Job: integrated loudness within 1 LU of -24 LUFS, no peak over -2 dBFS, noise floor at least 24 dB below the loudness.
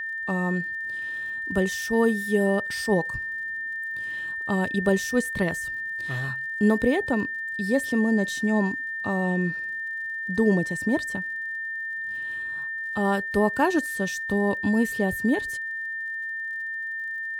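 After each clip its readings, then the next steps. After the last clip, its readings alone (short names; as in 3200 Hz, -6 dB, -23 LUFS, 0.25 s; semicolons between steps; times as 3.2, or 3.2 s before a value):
ticks 52/s; steady tone 1800 Hz; tone level -29 dBFS; loudness -26.0 LUFS; peak -9.0 dBFS; loudness target -24.0 LUFS
-> de-click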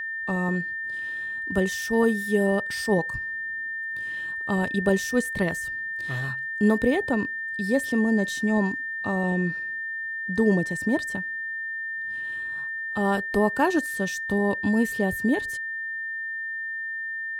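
ticks 0.46/s; steady tone 1800 Hz; tone level -29 dBFS
-> notch 1800 Hz, Q 30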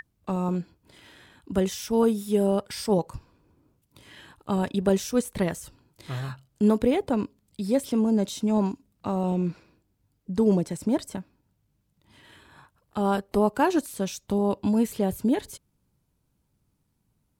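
steady tone none; loudness -26.0 LUFS; peak -9.5 dBFS; loudness target -24.0 LUFS
-> gain +2 dB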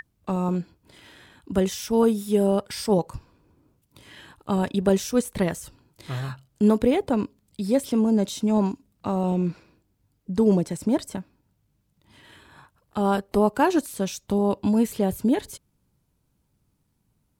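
loudness -24.0 LUFS; peak -7.5 dBFS; noise floor -71 dBFS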